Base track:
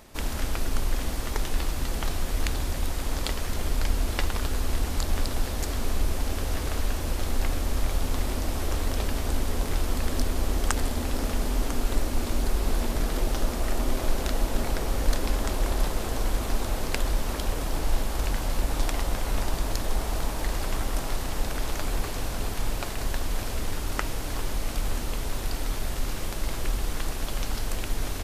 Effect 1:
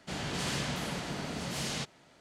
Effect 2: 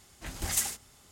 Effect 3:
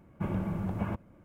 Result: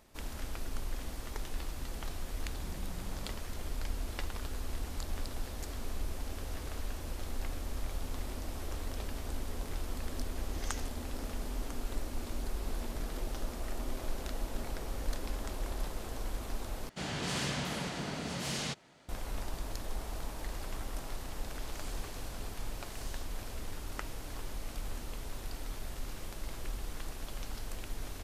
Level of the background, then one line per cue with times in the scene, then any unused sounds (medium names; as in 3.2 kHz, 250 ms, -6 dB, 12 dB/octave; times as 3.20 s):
base track -11.5 dB
2.43 s: add 3 -10.5 dB + compression, threshold -34 dBFS
10.13 s: add 2 -12 dB + elliptic low-pass 6.4 kHz
16.89 s: replace with 1 -1 dB
21.39 s: add 1 -12.5 dB + differentiator